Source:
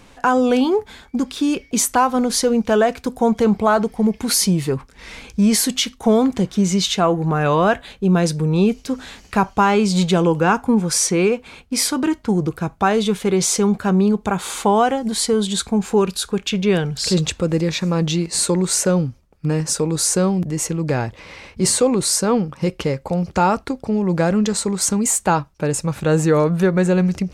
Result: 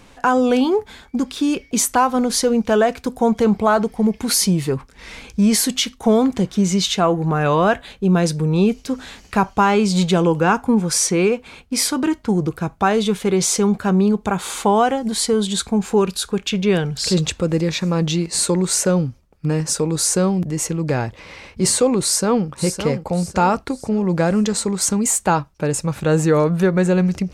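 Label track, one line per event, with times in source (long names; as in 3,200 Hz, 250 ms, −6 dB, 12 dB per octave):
22.010000	22.470000	delay throw 560 ms, feedback 40%, level −9 dB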